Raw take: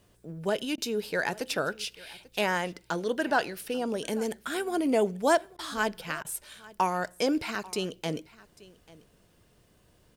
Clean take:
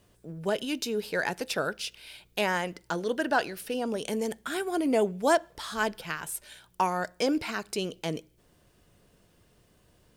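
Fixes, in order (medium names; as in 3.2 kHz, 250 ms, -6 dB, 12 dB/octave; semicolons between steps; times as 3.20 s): interpolate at 3.68/5.45/7.06/7.55 s, 3.1 ms; interpolate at 0.76/5.57/6.23 s, 17 ms; inverse comb 841 ms -21.5 dB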